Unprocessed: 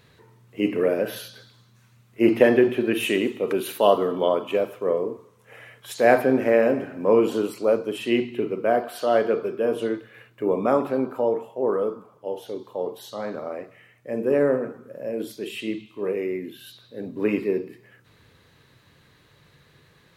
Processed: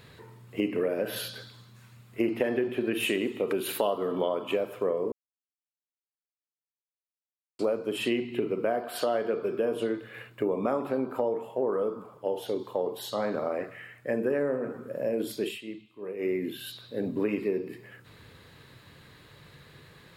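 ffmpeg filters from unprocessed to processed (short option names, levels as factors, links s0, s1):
-filter_complex "[0:a]asettb=1/sr,asplit=3[s0][s1][s2];[s0]atrim=end=13.604[s3];[s1]atrim=start=13.6:end=14.4,asetpts=PTS-STARTPTS,afade=t=in:d=0.004:c=qsin,afade=t=out:st=0.796:d=0.004:c=qsin,equalizer=f=1600:w=3.1:g=8[s4];[s2]atrim=start=14.396[s5];[s3][s4]acrossfade=d=0.004:c1=hsin:c2=qsin[s6];[s6][s5]acrossfade=d=0.004:c1=qsin:c2=hsin,asplit=5[s7][s8][s9][s10][s11];[s7]atrim=end=5.12,asetpts=PTS-STARTPTS,afade=t=out:st=5.116:d=0.004:c=hsin[s12];[s8]atrim=start=5.12:end=7.59,asetpts=PTS-STARTPTS,volume=0[s13];[s9]atrim=start=7.59:end=15.59,asetpts=PTS-STARTPTS,afade=t=in:d=0.004:c=hsin,afade=t=out:st=7.87:d=0.13:silence=0.177828[s14];[s10]atrim=start=15.59:end=16.18,asetpts=PTS-STARTPTS,volume=0.178[s15];[s11]atrim=start=16.18,asetpts=PTS-STARTPTS,afade=t=in:d=0.13:silence=0.177828[s16];[s12][s13][s14][s15][s16]concat=n=5:v=0:a=1,bandreject=f=6000:w=8.3,acompressor=threshold=0.0355:ratio=6,volume=1.58"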